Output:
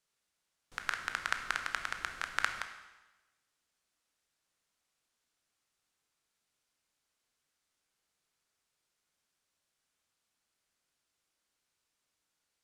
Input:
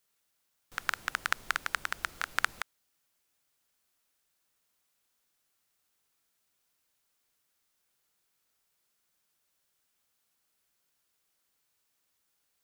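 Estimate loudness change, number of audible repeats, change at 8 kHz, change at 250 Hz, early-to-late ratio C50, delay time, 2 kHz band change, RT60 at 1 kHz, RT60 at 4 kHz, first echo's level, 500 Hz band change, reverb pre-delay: −2.5 dB, no echo audible, −4.0 dB, −2.0 dB, 8.0 dB, no echo audible, −2.5 dB, 1.1 s, 1.1 s, no echo audible, −2.5 dB, 17 ms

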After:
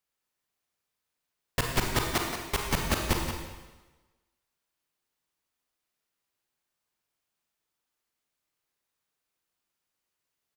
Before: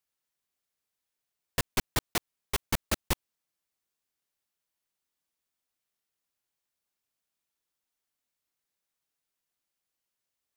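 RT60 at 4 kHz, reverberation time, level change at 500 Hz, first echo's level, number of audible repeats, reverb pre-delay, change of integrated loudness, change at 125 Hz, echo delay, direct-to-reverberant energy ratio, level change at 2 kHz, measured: 1.1 s, 1.2 s, +4.5 dB, −8.0 dB, 1, 31 ms, +2.5 dB, +4.5 dB, 177 ms, 0.0 dB, +4.0 dB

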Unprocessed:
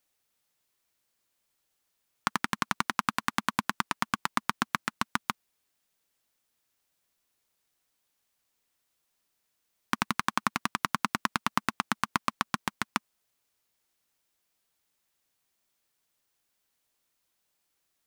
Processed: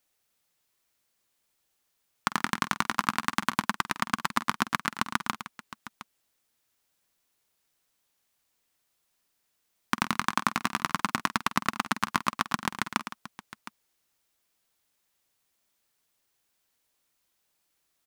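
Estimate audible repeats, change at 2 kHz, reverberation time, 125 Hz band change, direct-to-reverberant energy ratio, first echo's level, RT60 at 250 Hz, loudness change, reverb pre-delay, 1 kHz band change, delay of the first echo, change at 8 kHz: 3, +2.0 dB, no reverb audible, +2.0 dB, no reverb audible, −16.0 dB, no reverb audible, +2.0 dB, no reverb audible, +2.0 dB, 48 ms, +2.0 dB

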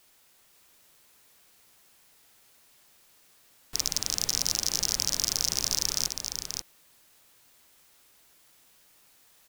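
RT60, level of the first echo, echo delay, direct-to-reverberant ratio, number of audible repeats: no reverb audible, −5.5 dB, 534 ms, no reverb audible, 1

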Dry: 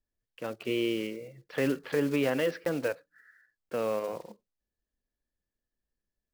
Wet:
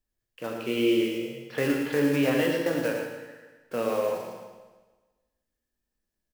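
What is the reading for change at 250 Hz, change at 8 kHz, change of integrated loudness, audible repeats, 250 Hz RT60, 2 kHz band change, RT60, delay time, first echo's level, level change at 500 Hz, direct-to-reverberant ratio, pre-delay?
+5.5 dB, +5.5 dB, +4.5 dB, 1, 1.3 s, +4.5 dB, 1.3 s, 114 ms, −7.0 dB, +4.0 dB, −1.0 dB, 17 ms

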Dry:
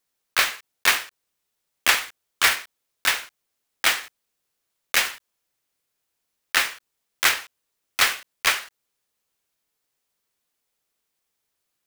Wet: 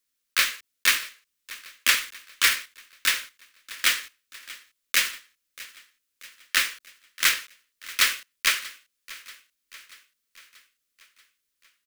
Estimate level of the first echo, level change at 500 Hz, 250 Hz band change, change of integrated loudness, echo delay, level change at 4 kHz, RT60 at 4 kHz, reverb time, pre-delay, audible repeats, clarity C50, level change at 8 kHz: −19.5 dB, −9.5 dB, −4.5 dB, −1.5 dB, 635 ms, −0.5 dB, no reverb audible, no reverb audible, no reverb audible, 4, no reverb audible, 0.0 dB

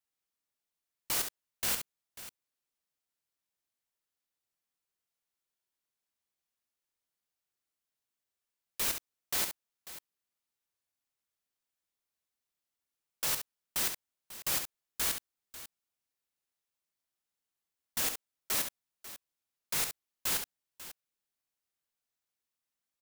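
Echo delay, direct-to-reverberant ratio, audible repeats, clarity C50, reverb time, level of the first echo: 68 ms, no reverb audible, 2, no reverb audible, no reverb audible, −7.5 dB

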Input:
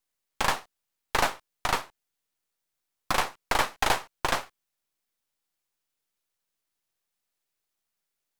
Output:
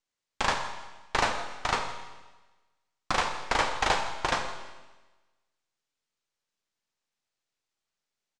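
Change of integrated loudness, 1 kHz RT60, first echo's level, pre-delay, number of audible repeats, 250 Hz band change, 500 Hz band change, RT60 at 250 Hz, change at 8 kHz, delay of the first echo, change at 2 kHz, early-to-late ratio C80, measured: −1.0 dB, 1.2 s, −18.0 dB, 23 ms, 1, −0.5 dB, 0.0 dB, 1.2 s, −3.0 dB, 163 ms, −0.5 dB, 8.0 dB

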